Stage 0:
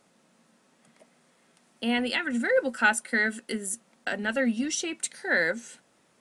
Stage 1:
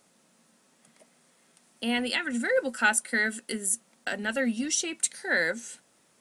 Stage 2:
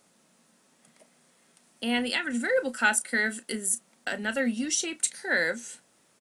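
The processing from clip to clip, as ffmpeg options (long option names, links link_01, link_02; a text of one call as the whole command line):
ffmpeg -i in.wav -af "highshelf=frequency=5200:gain=9.5,volume=-2dB" out.wav
ffmpeg -i in.wav -filter_complex "[0:a]asplit=2[link_01][link_02];[link_02]adelay=33,volume=-14dB[link_03];[link_01][link_03]amix=inputs=2:normalize=0" out.wav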